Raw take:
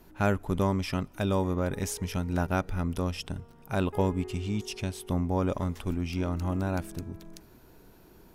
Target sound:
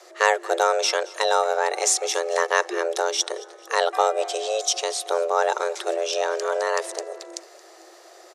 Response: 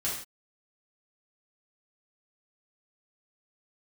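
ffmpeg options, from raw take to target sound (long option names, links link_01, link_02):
-af "highshelf=frequency=2800:gain=12,afreqshift=330,highpass=440,equalizer=frequency=450:width_type=q:width=4:gain=-4,equalizer=frequency=970:width_type=q:width=4:gain=-4,equalizer=frequency=2900:width_type=q:width=4:gain=-6,lowpass=frequency=8000:width=0.5412,lowpass=frequency=8000:width=1.3066,aecho=1:1:224|448|672:0.0891|0.0401|0.018,volume=8.5dB"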